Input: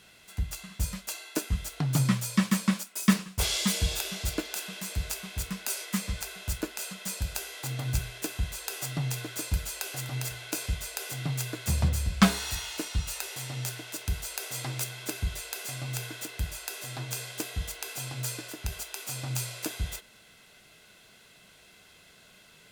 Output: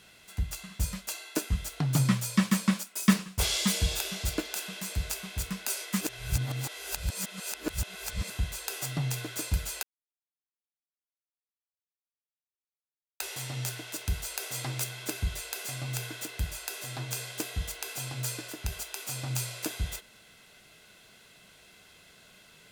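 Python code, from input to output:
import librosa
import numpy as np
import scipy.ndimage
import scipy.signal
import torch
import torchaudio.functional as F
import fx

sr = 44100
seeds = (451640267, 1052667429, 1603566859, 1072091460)

y = fx.edit(x, sr, fx.reverse_span(start_s=6.01, length_s=2.29),
    fx.silence(start_s=9.83, length_s=3.37), tone=tone)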